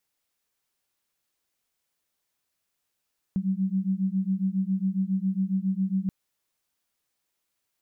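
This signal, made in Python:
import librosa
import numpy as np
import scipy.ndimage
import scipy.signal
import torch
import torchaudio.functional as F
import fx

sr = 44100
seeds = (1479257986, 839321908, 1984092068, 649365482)

y = fx.two_tone_beats(sr, length_s=2.73, hz=187.0, beat_hz=7.3, level_db=-26.5)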